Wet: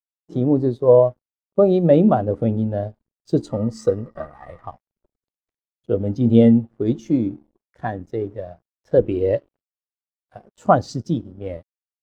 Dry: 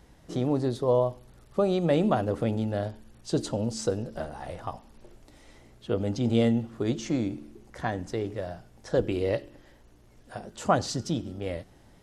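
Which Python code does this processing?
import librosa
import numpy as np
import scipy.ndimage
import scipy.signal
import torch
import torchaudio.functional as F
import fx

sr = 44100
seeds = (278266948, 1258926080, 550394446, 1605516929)

y = np.sign(x) * np.maximum(np.abs(x) - 10.0 ** (-45.5 / 20.0), 0.0)
y = fx.small_body(y, sr, hz=(1200.0, 1900.0), ring_ms=30, db=15, at=(3.5, 4.65))
y = fx.spectral_expand(y, sr, expansion=1.5)
y = y * 10.0 ** (8.5 / 20.0)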